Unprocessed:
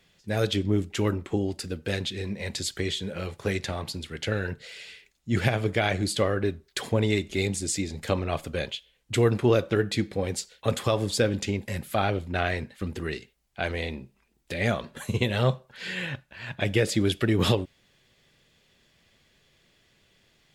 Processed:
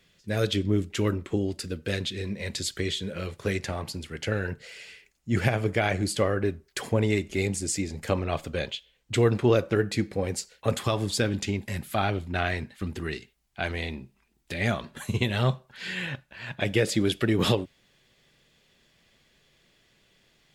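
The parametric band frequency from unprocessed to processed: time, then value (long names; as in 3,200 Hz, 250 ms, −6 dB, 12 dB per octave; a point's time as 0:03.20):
parametric band −7 dB 0.38 octaves
810 Hz
from 0:03.56 3,700 Hz
from 0:08.24 11,000 Hz
from 0:09.57 3,500 Hz
from 0:10.77 510 Hz
from 0:16.07 88 Hz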